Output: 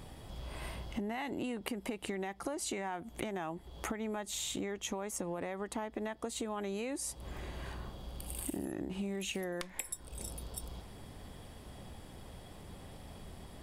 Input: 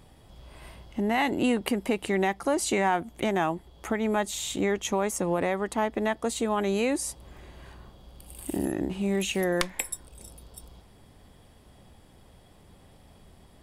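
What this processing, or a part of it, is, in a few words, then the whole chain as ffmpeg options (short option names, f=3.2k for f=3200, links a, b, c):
serial compression, leveller first: -af "acompressor=threshold=-28dB:ratio=2.5,acompressor=threshold=-41dB:ratio=5,volume=4.5dB"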